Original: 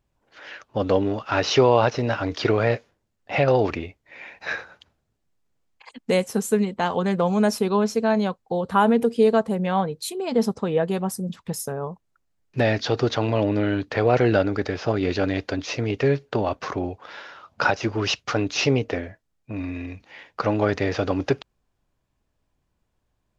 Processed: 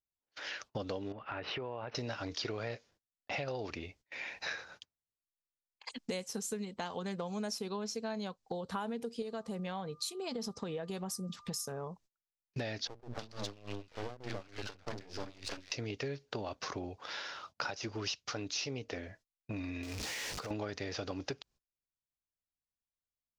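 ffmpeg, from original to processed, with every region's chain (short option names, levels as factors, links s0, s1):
-filter_complex "[0:a]asettb=1/sr,asplit=3[s0][s1][s2];[s0]atrim=end=1.124[s3];[s1]atrim=start=1.12:end=1.95,asetpts=PTS-STARTPTS,afade=t=in:d=0.004:c=qsin,afade=t=out:st=0.826:d=0.004:c=qsin,lowpass=f=2500:w=0.5412,lowpass=f=2500:w=1.3066,acompressor=threshold=0.0316:ratio=3:attack=3.2:release=140:knee=1:detection=peak[s4];[s2]atrim=start=1.946[s5];[s3][s4]acrossfade=d=0.004:c1=hsin:c2=qsin[s6];[s6][s5]acrossfade=d=0.004:c1=qsin:c2=hsin,asettb=1/sr,asplit=3[s7][s8][s9];[s7]atrim=end=9.224[s10];[s8]atrim=start=9.22:end=11.88,asetpts=PTS-STARTPTS,afade=t=in:d=0.004:c=qsin,afade=t=out:st=2.656:d=0.004:c=qsin,aeval=exprs='val(0)+0.00251*sin(2*PI*1200*n/s)':c=same,acompressor=threshold=0.0708:ratio=2:attack=3.2:release=140:knee=1:detection=peak[s11];[s9]atrim=start=11.876[s12];[s10][s11]acrossfade=d=0.004:c1=hsin:c2=qsin[s13];[s13][s12]acrossfade=d=0.004:c1=qsin:c2=hsin,asettb=1/sr,asplit=3[s14][s15][s16];[s14]atrim=end=12.874[s17];[s15]atrim=start=12.87:end=15.72,asetpts=PTS-STARTPTS,afade=t=in:d=0.004:c=qsin,afade=t=out:st=2.846:d=0.004:c=qsin,acrossover=split=260|1100[s18][s19][s20];[s18]adelay=50[s21];[s20]adelay=320[s22];[s21][s19][s22]amix=inputs=3:normalize=0,atrim=end_sample=125685,aeval=exprs='max(val(0),0)':c=same,aeval=exprs='val(0)*pow(10,-21*(0.5-0.5*cos(2*PI*3.4*n/s))/20)':c=same[s23];[s16]atrim=start=15.716[s24];[s17][s23]acrossfade=d=0.004:c1=hsin:c2=qsin[s25];[s25][s24]acrossfade=d=0.004:c1=qsin:c2=hsin,asettb=1/sr,asplit=3[s26][s27][s28];[s26]atrim=end=19.834[s29];[s27]atrim=start=19.83:end=20.51,asetpts=PTS-STARTPTS,afade=t=in:d=0.004:c=qsin,afade=t=out:st=0.676:d=0.004:c=qsin,aeval=exprs='val(0)+0.5*0.0299*sgn(val(0))':c=same,equalizer=f=440:t=o:w=0.32:g=5.5,acompressor=threshold=0.0224:ratio=6:attack=3.2:release=140:knee=1:detection=peak[s30];[s28]atrim=start=20.506[s31];[s29][s30]acrossfade=d=0.004:c1=hsin:c2=qsin[s32];[s32][s31]acrossfade=d=0.004:c1=qsin:c2=hsin,agate=range=0.0398:threshold=0.00355:ratio=16:detection=peak,equalizer=f=5400:t=o:w=1.5:g=12,acompressor=threshold=0.02:ratio=5,volume=0.668"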